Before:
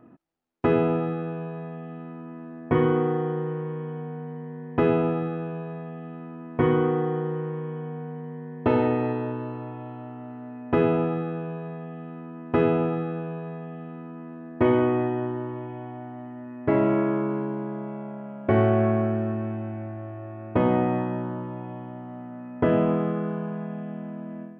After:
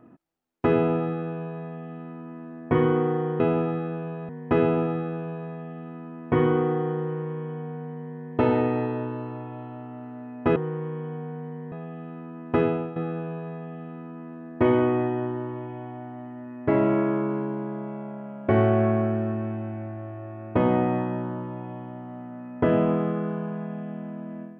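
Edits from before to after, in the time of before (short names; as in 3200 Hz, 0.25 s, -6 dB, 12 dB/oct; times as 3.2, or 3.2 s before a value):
3.4–4.56 swap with 10.83–11.72
12.55–12.96 fade out, to -12.5 dB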